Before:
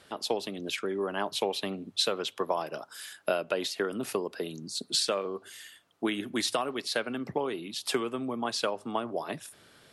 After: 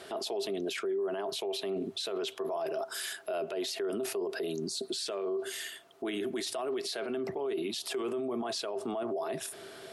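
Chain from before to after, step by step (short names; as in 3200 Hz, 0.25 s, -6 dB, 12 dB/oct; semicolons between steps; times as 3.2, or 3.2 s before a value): low shelf 130 Hz -10.5 dB; small resonant body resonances 390/660 Hz, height 16 dB, ringing for 85 ms; in parallel at +1 dB: negative-ratio compressor -34 dBFS; on the sum: limiter -23.5 dBFS, peak gain reduction 15.5 dB; gain -3.5 dB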